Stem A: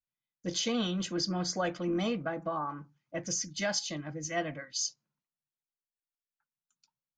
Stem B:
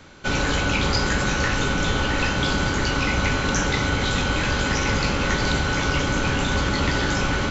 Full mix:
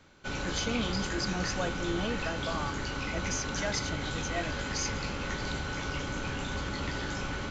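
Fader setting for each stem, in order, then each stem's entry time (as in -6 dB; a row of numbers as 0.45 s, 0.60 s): -2.5 dB, -12.5 dB; 0.00 s, 0.00 s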